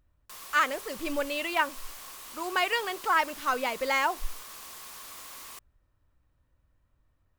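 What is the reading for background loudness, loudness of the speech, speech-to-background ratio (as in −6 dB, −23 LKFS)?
−42.5 LKFS, −28.5 LKFS, 14.0 dB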